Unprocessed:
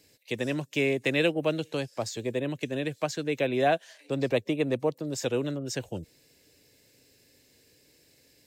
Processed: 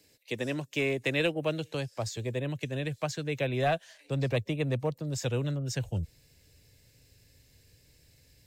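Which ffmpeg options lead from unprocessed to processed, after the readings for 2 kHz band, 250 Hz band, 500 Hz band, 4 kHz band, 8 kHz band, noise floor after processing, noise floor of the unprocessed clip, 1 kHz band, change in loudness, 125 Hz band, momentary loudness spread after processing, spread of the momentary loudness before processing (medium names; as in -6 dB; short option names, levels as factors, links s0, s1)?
-2.0 dB, -4.0 dB, -4.0 dB, -2.0 dB, -2.0 dB, -64 dBFS, -63 dBFS, -3.5 dB, -2.5 dB, +4.5 dB, 7 LU, 9 LU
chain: -filter_complex "[0:a]asubboost=boost=9.5:cutoff=100,acrossover=split=120|1600|4300[s0][s1][s2][s3];[s1]aeval=exprs='clip(val(0),-1,0.0794)':c=same[s4];[s0][s4][s2][s3]amix=inputs=4:normalize=0,volume=0.794"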